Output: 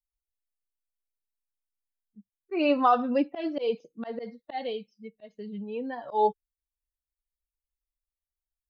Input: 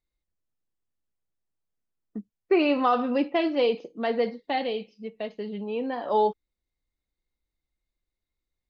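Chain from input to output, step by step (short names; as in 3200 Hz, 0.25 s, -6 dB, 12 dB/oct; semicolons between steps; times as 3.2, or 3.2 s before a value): per-bin expansion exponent 1.5; dynamic EQ 780 Hz, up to +4 dB, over -37 dBFS, Q 1; auto swell 0.15 s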